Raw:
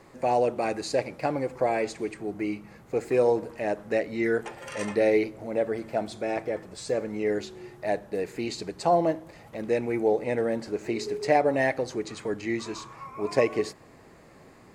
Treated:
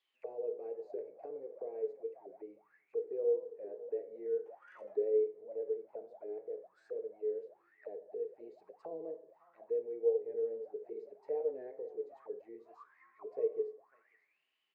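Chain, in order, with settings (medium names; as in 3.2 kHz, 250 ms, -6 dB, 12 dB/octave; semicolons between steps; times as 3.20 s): echo from a far wall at 94 m, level -17 dB; on a send at -6 dB: reverberation RT60 0.60 s, pre-delay 3 ms; on the sum: auto-wah 450–3500 Hz, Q 16, down, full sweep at -26 dBFS; warped record 45 rpm, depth 100 cents; trim -4.5 dB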